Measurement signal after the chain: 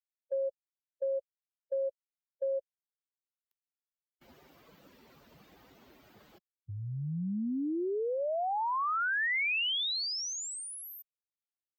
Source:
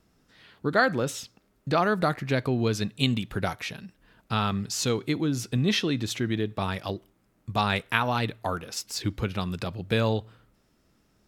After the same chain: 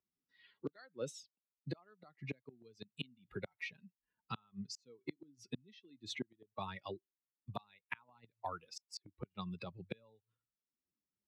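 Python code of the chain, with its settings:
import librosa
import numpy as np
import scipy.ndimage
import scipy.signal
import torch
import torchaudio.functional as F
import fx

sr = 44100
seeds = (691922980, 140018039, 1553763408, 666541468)

y = fx.bin_expand(x, sr, power=2.0)
y = fx.gate_flip(y, sr, shuts_db=-24.0, range_db=-36)
y = fx.bandpass_edges(y, sr, low_hz=180.0, high_hz=4700.0)
y = fx.band_squash(y, sr, depth_pct=70)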